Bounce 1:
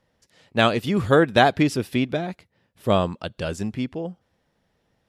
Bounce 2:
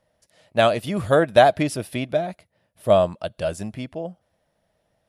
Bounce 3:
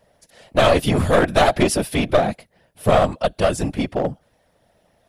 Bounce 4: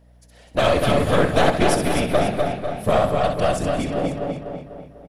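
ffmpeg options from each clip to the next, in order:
-af "equalizer=f=250:t=o:w=0.33:g=-4,equalizer=f=400:t=o:w=0.33:g=-4,equalizer=f=630:t=o:w=0.33:g=12,equalizer=f=10k:t=o:w=0.33:g=11,volume=-2.5dB"
-filter_complex "[0:a]apsyclip=16.5dB,afftfilt=real='hypot(re,im)*cos(2*PI*random(0))':imag='hypot(re,im)*sin(2*PI*random(1))':win_size=512:overlap=0.75,acrossover=split=3900[a][b];[a]aeval=exprs='clip(val(0),-1,0.188)':c=same[c];[c][b]amix=inputs=2:normalize=0,volume=-1.5dB"
-filter_complex "[0:a]asplit=2[a][b];[b]adelay=247,lowpass=f=3.8k:p=1,volume=-4.5dB,asplit=2[c][d];[d]adelay=247,lowpass=f=3.8k:p=1,volume=0.49,asplit=2[e][f];[f]adelay=247,lowpass=f=3.8k:p=1,volume=0.49,asplit=2[g][h];[h]adelay=247,lowpass=f=3.8k:p=1,volume=0.49,asplit=2[i][j];[j]adelay=247,lowpass=f=3.8k:p=1,volume=0.49,asplit=2[k][l];[l]adelay=247,lowpass=f=3.8k:p=1,volume=0.49[m];[c][e][g][i][k][m]amix=inputs=6:normalize=0[n];[a][n]amix=inputs=2:normalize=0,aeval=exprs='val(0)+0.00398*(sin(2*PI*60*n/s)+sin(2*PI*2*60*n/s)/2+sin(2*PI*3*60*n/s)/3+sin(2*PI*4*60*n/s)/4+sin(2*PI*5*60*n/s)/5)':c=same,asplit=2[o][p];[p]aecho=0:1:65|190|254|535:0.422|0.15|0.376|0.188[q];[o][q]amix=inputs=2:normalize=0,volume=-4dB"

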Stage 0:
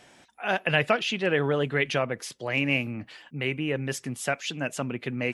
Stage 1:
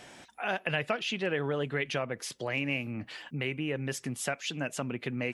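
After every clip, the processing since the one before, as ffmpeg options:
-af "acompressor=threshold=-40dB:ratio=2,volume=4dB"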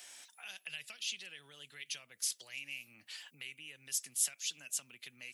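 -filter_complex "[0:a]acrossover=split=190|3000[a][b][c];[b]acompressor=threshold=-45dB:ratio=10[d];[a][d][c]amix=inputs=3:normalize=0,aderivative,volume=5.5dB"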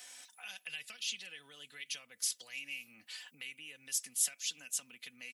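-af "aecho=1:1:4:0.49"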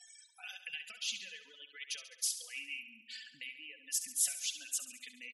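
-filter_complex "[0:a]afftfilt=real='re*gte(hypot(re,im),0.00447)':imag='im*gte(hypot(re,im),0.00447)':win_size=1024:overlap=0.75,asplit=2[a][b];[b]aecho=0:1:69|138|207|276|345|414|483:0.282|0.163|0.0948|0.055|0.0319|0.0185|0.0107[c];[a][c]amix=inputs=2:normalize=0"

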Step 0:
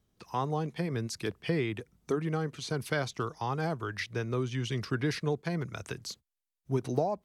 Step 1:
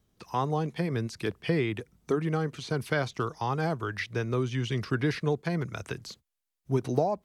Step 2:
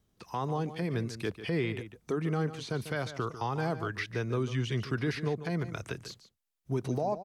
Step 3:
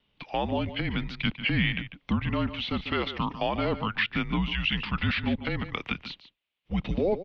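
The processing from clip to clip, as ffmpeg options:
-filter_complex "[0:a]acrossover=split=3600[a][b];[b]acompressor=threshold=-47dB:ratio=4:attack=1:release=60[c];[a][c]amix=inputs=2:normalize=0,volume=3dB"
-filter_complex "[0:a]alimiter=limit=-19.5dB:level=0:latency=1,asplit=2[a][b];[b]adelay=145.8,volume=-12dB,highshelf=f=4k:g=-3.28[c];[a][c]amix=inputs=2:normalize=0,volume=-2dB"
-af "aexciter=amount=4.4:drive=4.2:freq=2.5k,highpass=f=230:t=q:w=0.5412,highpass=f=230:t=q:w=1.307,lowpass=f=3.4k:t=q:w=0.5176,lowpass=f=3.4k:t=q:w=0.7071,lowpass=f=3.4k:t=q:w=1.932,afreqshift=-200,volume=6dB"

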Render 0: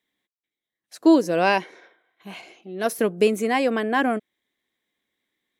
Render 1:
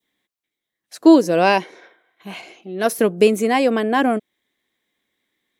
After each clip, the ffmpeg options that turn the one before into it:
-af "adynamicequalizer=threshold=0.0126:dfrequency=1700:dqfactor=1.2:tfrequency=1700:tqfactor=1.2:attack=5:release=100:ratio=0.375:range=2.5:mode=cutabove:tftype=bell,volume=5dB"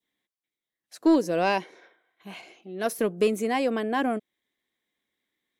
-af "asoftclip=type=tanh:threshold=-3dB,volume=-8dB"

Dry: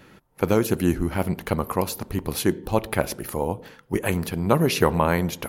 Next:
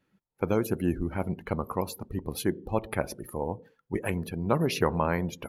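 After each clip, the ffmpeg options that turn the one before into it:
-af "afftdn=nr=19:nf=-35,volume=-6dB"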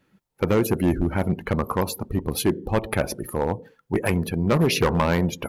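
-af "asoftclip=type=hard:threshold=-22.5dB,volume=8.5dB"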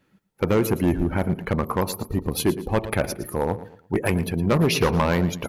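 -af "aecho=1:1:114|228|342:0.178|0.0569|0.0182"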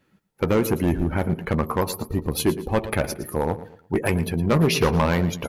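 -filter_complex "[0:a]asplit=2[a][b];[b]adelay=13,volume=-11.5dB[c];[a][c]amix=inputs=2:normalize=0"

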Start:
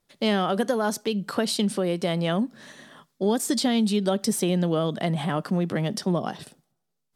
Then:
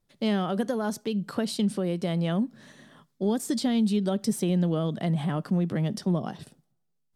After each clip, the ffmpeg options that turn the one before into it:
-af "lowshelf=f=230:g=11.5,volume=-7dB"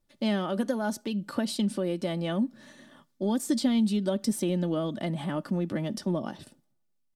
-af "aecho=1:1:3.4:0.51,volume=-1.5dB"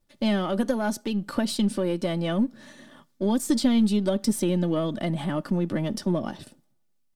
-af "aeval=exprs='if(lt(val(0),0),0.708*val(0),val(0))':c=same,volume=5dB"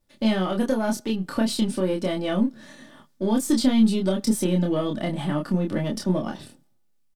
-filter_complex "[0:a]asplit=2[a][b];[b]adelay=27,volume=-3dB[c];[a][c]amix=inputs=2:normalize=0"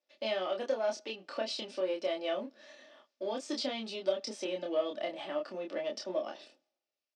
-af "highpass=f=370:w=0.5412,highpass=f=370:w=1.3066,equalizer=f=410:t=q:w=4:g=-3,equalizer=f=610:t=q:w=4:g=7,equalizer=f=940:t=q:w=4:g=-4,equalizer=f=1.5k:t=q:w=4:g=-3,equalizer=f=2.6k:t=q:w=4:g=6,equalizer=f=5.3k:t=q:w=4:g=4,lowpass=f=5.9k:w=0.5412,lowpass=f=5.9k:w=1.3066,volume=-8dB"

